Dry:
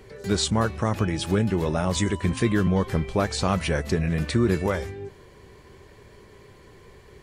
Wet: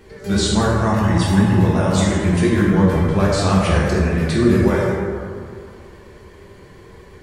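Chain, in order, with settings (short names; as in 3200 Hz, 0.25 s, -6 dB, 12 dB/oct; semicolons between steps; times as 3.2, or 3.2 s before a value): 0.87–1.58 comb 1.1 ms, depth 65%; plate-style reverb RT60 2.2 s, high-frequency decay 0.4×, DRR -5.5 dB; vibrato 8.6 Hz 35 cents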